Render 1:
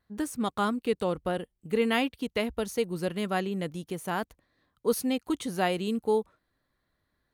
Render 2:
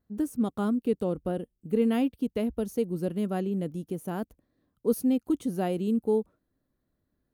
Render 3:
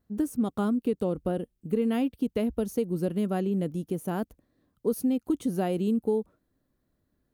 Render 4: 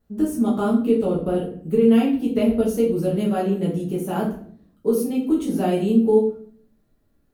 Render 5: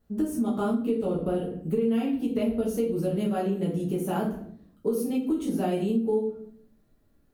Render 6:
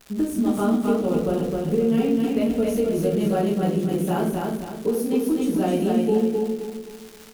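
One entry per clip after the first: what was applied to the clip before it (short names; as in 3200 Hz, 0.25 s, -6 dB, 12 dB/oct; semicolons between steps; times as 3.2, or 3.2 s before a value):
graphic EQ 250/1000/2000/4000/8000 Hz +5/-7/-10/-9/-6 dB
compressor, threshold -25 dBFS, peak gain reduction 7 dB; gain +3 dB
shoebox room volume 61 m³, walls mixed, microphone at 1.4 m
compressor 3:1, threshold -25 dBFS, peak gain reduction 10.5 dB
crackle 340/s -36 dBFS; on a send: feedback echo 0.261 s, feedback 39%, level -3 dB; on the sum: gain +3.5 dB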